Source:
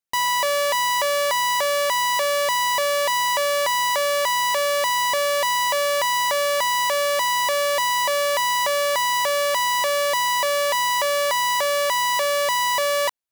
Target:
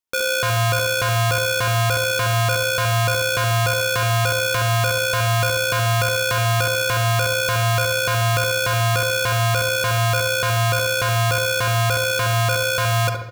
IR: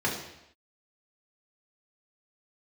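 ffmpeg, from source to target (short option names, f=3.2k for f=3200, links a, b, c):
-filter_complex "[0:a]aeval=exprs='val(0)*sin(2*PI*460*n/s)':c=same,asplit=2[a][b];[b]adelay=71,lowpass=f=1.6k:p=1,volume=-3.5dB,asplit=2[c][d];[d]adelay=71,lowpass=f=1.6k:p=1,volume=0.47,asplit=2[e][f];[f]adelay=71,lowpass=f=1.6k:p=1,volume=0.47,asplit=2[g][h];[h]adelay=71,lowpass=f=1.6k:p=1,volume=0.47,asplit=2[i][j];[j]adelay=71,lowpass=f=1.6k:p=1,volume=0.47,asplit=2[k][l];[l]adelay=71,lowpass=f=1.6k:p=1,volume=0.47[m];[a][c][e][g][i][k][m]amix=inputs=7:normalize=0,asplit=2[n][o];[1:a]atrim=start_sample=2205,adelay=41[p];[o][p]afir=irnorm=-1:irlink=0,volume=-19dB[q];[n][q]amix=inputs=2:normalize=0,volume=3dB"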